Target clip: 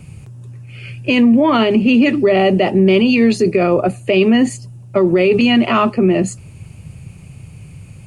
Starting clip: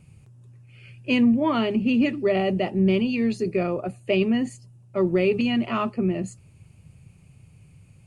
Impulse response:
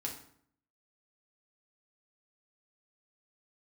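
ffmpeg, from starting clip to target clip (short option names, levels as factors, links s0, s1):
-filter_complex "[0:a]acrossover=split=230[s0][s1];[s0]acompressor=threshold=0.0178:ratio=6[s2];[s2][s1]amix=inputs=2:normalize=0,alimiter=level_in=8.91:limit=0.891:release=50:level=0:latency=1,volume=0.631"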